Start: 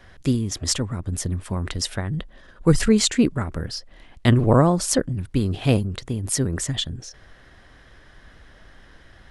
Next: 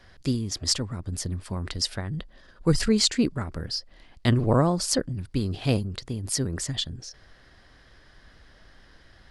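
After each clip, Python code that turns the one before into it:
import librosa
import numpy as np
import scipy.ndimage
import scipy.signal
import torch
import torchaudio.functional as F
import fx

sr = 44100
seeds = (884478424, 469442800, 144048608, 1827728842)

y = fx.peak_eq(x, sr, hz=4700.0, db=9.0, octaves=0.41)
y = F.gain(torch.from_numpy(y), -5.0).numpy()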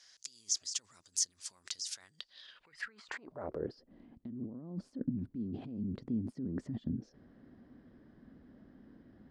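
y = fx.over_compress(x, sr, threshold_db=-34.0, ratio=-1.0)
y = fx.filter_sweep_bandpass(y, sr, from_hz=6400.0, to_hz=240.0, start_s=2.12, end_s=3.91, q=3.8)
y = F.gain(torch.from_numpy(y), 5.0).numpy()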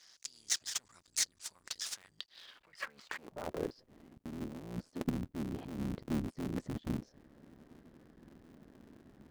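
y = fx.cycle_switch(x, sr, every=3, mode='muted')
y = F.gain(torch.from_numpy(y), 1.5).numpy()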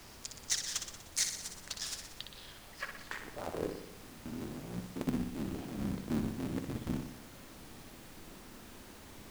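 y = fx.dmg_noise_colour(x, sr, seeds[0], colour='pink', level_db=-54.0)
y = fx.echo_feedback(y, sr, ms=61, feedback_pct=59, wet_db=-7)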